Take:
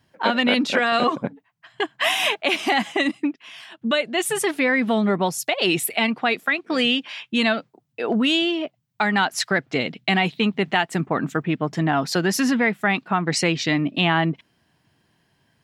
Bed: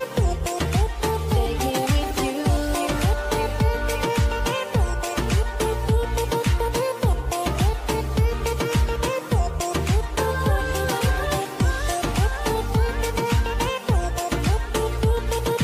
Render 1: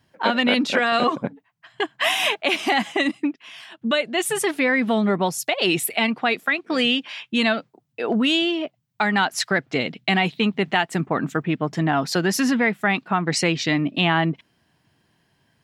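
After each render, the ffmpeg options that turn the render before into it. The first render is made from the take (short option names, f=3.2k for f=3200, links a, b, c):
-af anull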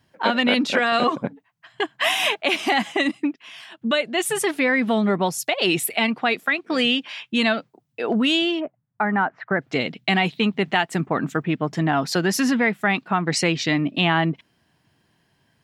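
-filter_complex "[0:a]asplit=3[a][b][c];[a]afade=t=out:st=8.59:d=0.02[d];[b]lowpass=f=1.7k:w=0.5412,lowpass=f=1.7k:w=1.3066,afade=t=in:st=8.59:d=0.02,afade=t=out:st=9.6:d=0.02[e];[c]afade=t=in:st=9.6:d=0.02[f];[d][e][f]amix=inputs=3:normalize=0"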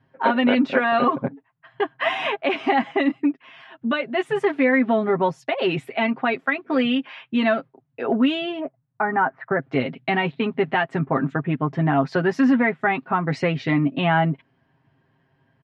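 -af "lowpass=1.8k,aecho=1:1:7.5:0.65"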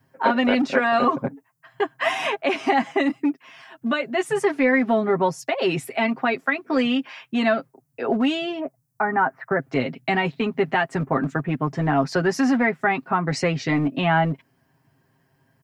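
-filter_complex "[0:a]acrossover=split=320[a][b];[a]asoftclip=type=hard:threshold=-22dB[c];[b]aexciter=amount=4.1:drive=7.7:freq=4.9k[d];[c][d]amix=inputs=2:normalize=0"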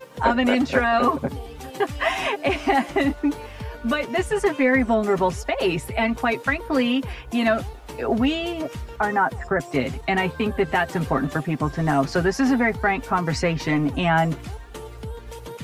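-filter_complex "[1:a]volume=-13.5dB[a];[0:a][a]amix=inputs=2:normalize=0"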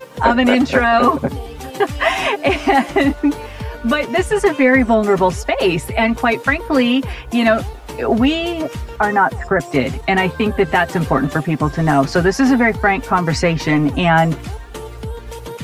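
-af "volume=6.5dB,alimiter=limit=-1dB:level=0:latency=1"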